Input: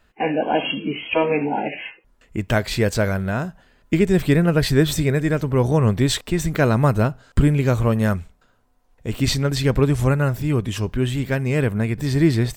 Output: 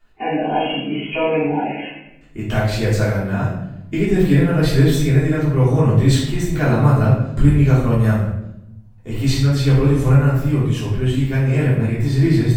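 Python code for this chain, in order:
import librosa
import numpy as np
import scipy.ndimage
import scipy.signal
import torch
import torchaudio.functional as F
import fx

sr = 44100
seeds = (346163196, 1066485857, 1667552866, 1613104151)

y = fx.room_shoebox(x, sr, seeds[0], volume_m3=250.0, walls='mixed', distance_m=3.3)
y = F.gain(torch.from_numpy(y), -10.0).numpy()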